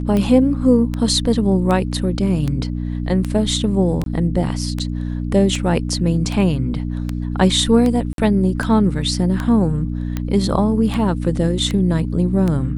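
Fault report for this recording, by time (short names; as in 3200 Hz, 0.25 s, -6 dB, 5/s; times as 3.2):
hum 60 Hz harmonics 5 -23 dBFS
tick 78 rpm -10 dBFS
4.04–4.06 gap 22 ms
8.13–8.18 gap 52 ms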